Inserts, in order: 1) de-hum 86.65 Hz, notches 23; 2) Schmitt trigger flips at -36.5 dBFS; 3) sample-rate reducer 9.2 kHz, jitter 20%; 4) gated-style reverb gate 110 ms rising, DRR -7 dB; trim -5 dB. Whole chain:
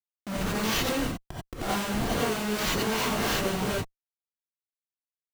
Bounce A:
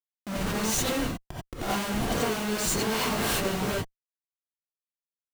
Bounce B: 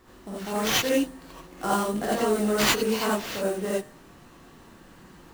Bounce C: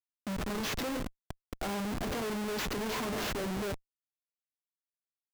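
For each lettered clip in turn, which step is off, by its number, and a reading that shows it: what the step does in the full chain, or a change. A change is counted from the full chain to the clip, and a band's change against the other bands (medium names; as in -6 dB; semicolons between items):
3, distortion -3 dB; 2, crest factor change +2.5 dB; 4, momentary loudness spread change -2 LU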